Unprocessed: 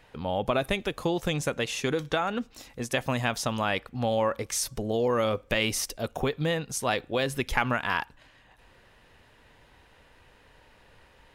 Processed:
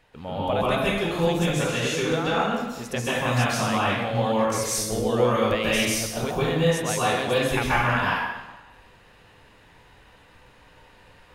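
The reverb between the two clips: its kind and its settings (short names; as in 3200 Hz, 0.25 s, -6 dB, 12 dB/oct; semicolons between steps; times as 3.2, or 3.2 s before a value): plate-style reverb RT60 1.1 s, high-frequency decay 0.8×, pre-delay 0.12 s, DRR -8.5 dB; gain -4 dB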